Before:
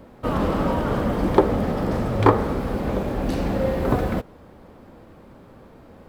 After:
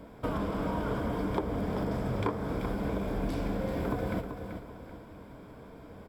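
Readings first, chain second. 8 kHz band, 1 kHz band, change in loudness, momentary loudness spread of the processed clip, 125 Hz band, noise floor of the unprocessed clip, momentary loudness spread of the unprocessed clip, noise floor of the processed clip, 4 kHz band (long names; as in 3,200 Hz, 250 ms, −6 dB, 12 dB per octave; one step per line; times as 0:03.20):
−9.0 dB, −11.5 dB, −10.5 dB, 17 LU, −9.5 dB, −48 dBFS, 7 LU, −50 dBFS, −9.0 dB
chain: EQ curve with evenly spaced ripples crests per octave 1.7, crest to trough 7 dB
downward compressor, threshold −26 dBFS, peak gain reduction 16.5 dB
on a send: repeating echo 385 ms, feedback 37%, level −8.5 dB
on the sum: level −3 dB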